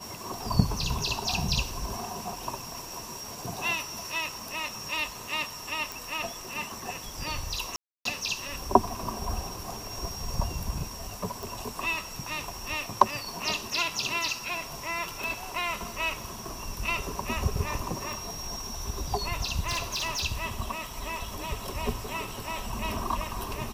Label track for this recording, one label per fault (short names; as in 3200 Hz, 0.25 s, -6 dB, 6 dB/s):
5.920000	5.920000	pop
7.760000	8.050000	gap 0.293 s
11.430000	11.430000	pop
15.240000	15.240000	pop
18.130000	18.130000	pop
19.630000	20.220000	clipped -26 dBFS